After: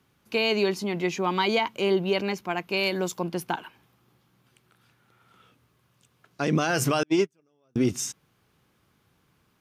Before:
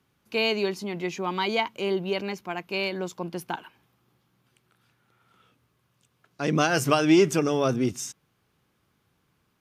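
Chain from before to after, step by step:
0:02.77–0:03.22: high-shelf EQ 7,000 Hz +10.5 dB
0:07.03–0:07.76: noise gate −15 dBFS, range −47 dB
brickwall limiter −17 dBFS, peak gain reduction 9.5 dB
level +3.5 dB

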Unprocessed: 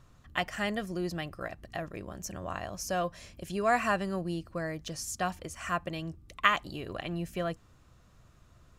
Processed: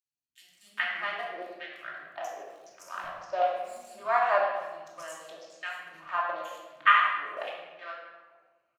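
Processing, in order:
adaptive Wiener filter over 25 samples
0:01.96–0:03.83: floating-point word with a short mantissa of 6 bits
auto-filter high-pass saw down 1 Hz 610–2,700 Hz
three-band delay without the direct sound highs, lows, mids 40/420 ms, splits 250/5,100 Hz
rectangular room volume 890 cubic metres, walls mixed, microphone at 2.7 metres
level −4.5 dB

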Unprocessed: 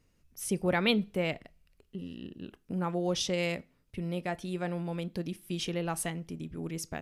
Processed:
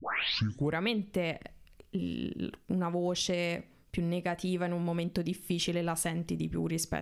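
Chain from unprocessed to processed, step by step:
turntable start at the beginning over 0.81 s
downward compressor 6 to 1, threshold −36 dBFS, peak gain reduction 14 dB
level +8 dB

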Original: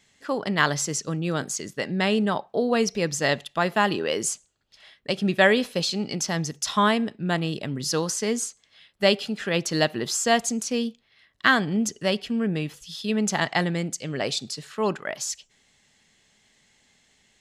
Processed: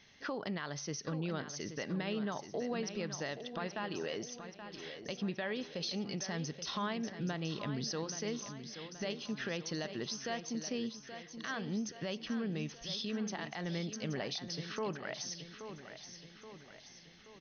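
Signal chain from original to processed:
downward compressor 6 to 1, threshold −36 dBFS, peak gain reduction 21 dB
brickwall limiter −29.5 dBFS, peak gain reduction 10.5 dB
linear-phase brick-wall low-pass 6,400 Hz
on a send: repeating echo 827 ms, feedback 52%, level −10 dB
on the sum: level +1 dB

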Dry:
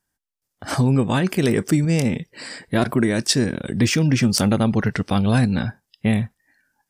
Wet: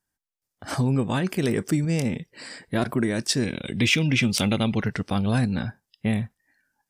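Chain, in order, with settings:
gain on a spectral selection 0:03.43–0:04.83, 2,000–4,100 Hz +10 dB
level −5 dB

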